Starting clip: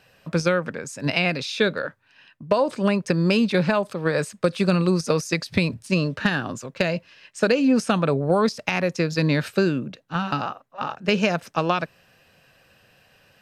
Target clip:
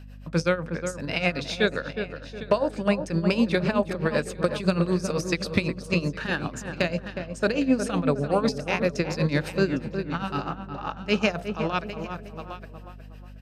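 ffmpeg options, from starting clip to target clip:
-filter_complex "[0:a]bandreject=f=63.11:t=h:w=4,bandreject=f=126.22:t=h:w=4,bandreject=f=189.33:t=h:w=4,bandreject=f=252.44:t=h:w=4,bandreject=f=315.55:t=h:w=4,bandreject=f=378.66:t=h:w=4,bandreject=f=441.77:t=h:w=4,bandreject=f=504.88:t=h:w=4,bandreject=f=567.99:t=h:w=4,bandreject=f=631.1:t=h:w=4,bandreject=f=694.21:t=h:w=4,bandreject=f=757.32:t=h:w=4,bandreject=f=820.43:t=h:w=4,asplit=2[a][b];[b]aecho=0:1:808:0.168[c];[a][c]amix=inputs=2:normalize=0,tremolo=f=7.9:d=0.81,asplit=2[d][e];[e]adelay=363,lowpass=f=1.4k:p=1,volume=-7dB,asplit=2[f][g];[g]adelay=363,lowpass=f=1.4k:p=1,volume=0.38,asplit=2[h][i];[i]adelay=363,lowpass=f=1.4k:p=1,volume=0.38,asplit=2[j][k];[k]adelay=363,lowpass=f=1.4k:p=1,volume=0.38[l];[f][h][j][l]amix=inputs=4:normalize=0[m];[d][m]amix=inputs=2:normalize=0,aeval=exprs='val(0)+0.00794*(sin(2*PI*50*n/s)+sin(2*PI*2*50*n/s)/2+sin(2*PI*3*50*n/s)/3+sin(2*PI*4*50*n/s)/4+sin(2*PI*5*50*n/s)/5)':c=same"

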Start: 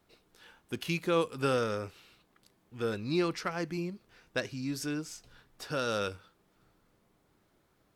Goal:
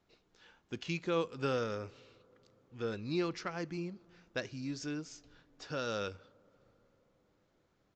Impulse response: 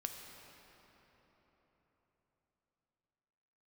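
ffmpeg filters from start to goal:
-filter_complex "[0:a]asplit=2[a][b];[1:a]atrim=start_sample=2205,lowpass=f=1.3k:w=0.5412,lowpass=f=1.3k:w=1.3066[c];[b][c]afir=irnorm=-1:irlink=0,volume=-18dB[d];[a][d]amix=inputs=2:normalize=0,aresample=16000,aresample=44100,volume=-5dB"

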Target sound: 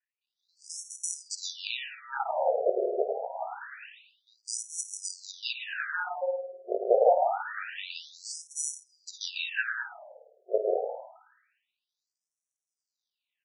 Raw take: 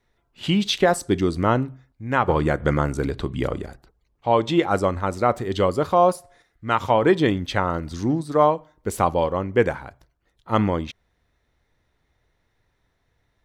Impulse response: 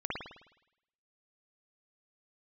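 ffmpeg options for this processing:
-filter_complex "[0:a]acrusher=samples=41:mix=1:aa=0.000001,acrossover=split=1900[a][b];[b]adelay=210[c];[a][c]amix=inputs=2:normalize=0,asplit=2[d][e];[1:a]atrim=start_sample=2205,adelay=54[f];[e][f]afir=irnorm=-1:irlink=0,volume=-8.5dB[g];[d][g]amix=inputs=2:normalize=0,afftfilt=real='re*between(b*sr/1024,510*pow(7800/510,0.5+0.5*sin(2*PI*0.26*pts/sr))/1.41,510*pow(7800/510,0.5+0.5*sin(2*PI*0.26*pts/sr))*1.41)':imag='im*between(b*sr/1024,510*pow(7800/510,0.5+0.5*sin(2*PI*0.26*pts/sr))/1.41,510*pow(7800/510,0.5+0.5*sin(2*PI*0.26*pts/sr))*1.41)':win_size=1024:overlap=0.75"

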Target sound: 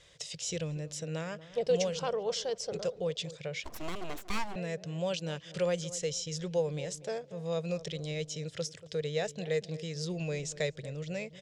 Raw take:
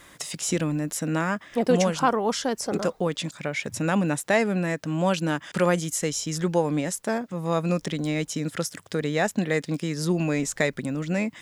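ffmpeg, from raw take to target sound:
-filter_complex "[0:a]firequalizer=gain_entry='entry(150,0);entry(250,-21);entry(460,3);entry(830,-10);entry(1200,-12);entry(2100,-5);entry(3000,2);entry(5500,2);entry(8000,-5);entry(13000,-26)':delay=0.05:min_phase=1,asplit=2[a][b];[b]adelay=235,lowpass=f=950:p=1,volume=-15dB,asplit=2[c][d];[d]adelay=235,lowpass=f=950:p=1,volume=0.4,asplit=2[e][f];[f]adelay=235,lowpass=f=950:p=1,volume=0.4,asplit=2[g][h];[h]adelay=235,lowpass=f=950:p=1,volume=0.4[i];[a][c][e][g][i]amix=inputs=5:normalize=0,asettb=1/sr,asplit=3[j][k][l];[j]atrim=end=3.644[m];[k]atrim=start=3.64:end=4.56,asetpts=PTS-STARTPTS,afade=t=in:d=0.004:c=qsin,afade=t=out:st=0.916:d=0.004:c=qsin,aeval=exprs='abs(val(0))':c=same[n];[l]atrim=start=4.556[o];[m][n]acrossfade=d=0.004:c1=hsin:c2=qsin[p];[p][o]acrossfade=d=0.004:c1=qsin:c2=hsin,volume=-6.5dB"

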